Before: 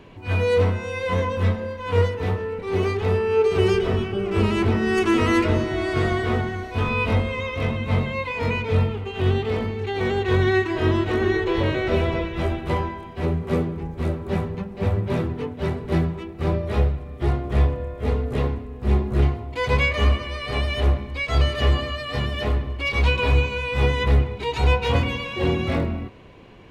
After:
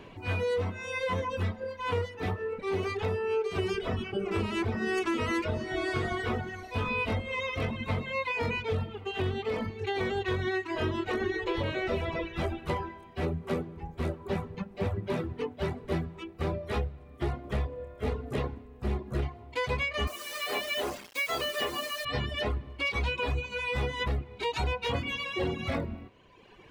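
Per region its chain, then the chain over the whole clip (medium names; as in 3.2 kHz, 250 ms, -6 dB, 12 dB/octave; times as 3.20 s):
20.07–22.05 s: high-pass 310 Hz + word length cut 6-bit, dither none
whole clip: reverb removal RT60 1.4 s; bass shelf 230 Hz -4.5 dB; compression, threshold -27 dBFS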